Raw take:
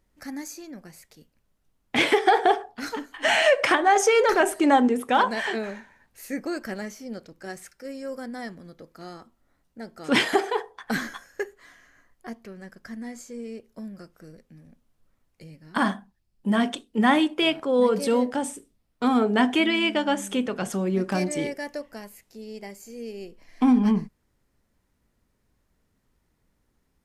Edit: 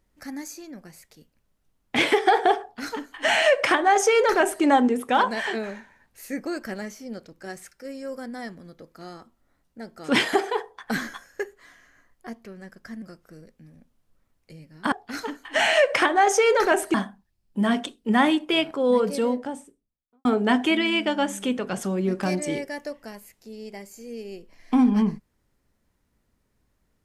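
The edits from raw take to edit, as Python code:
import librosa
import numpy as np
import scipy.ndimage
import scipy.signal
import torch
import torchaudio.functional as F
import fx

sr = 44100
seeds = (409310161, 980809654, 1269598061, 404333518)

y = fx.studio_fade_out(x, sr, start_s=17.78, length_s=1.36)
y = fx.edit(y, sr, fx.duplicate(start_s=2.61, length_s=2.02, to_s=15.83),
    fx.cut(start_s=13.02, length_s=0.91), tone=tone)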